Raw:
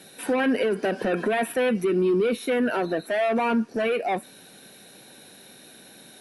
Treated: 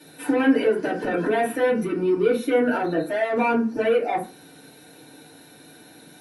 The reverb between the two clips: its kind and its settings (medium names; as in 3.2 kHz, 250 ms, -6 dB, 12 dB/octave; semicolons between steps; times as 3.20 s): FDN reverb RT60 0.33 s, low-frequency decay 1.2×, high-frequency decay 0.45×, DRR -7 dB; trim -6.5 dB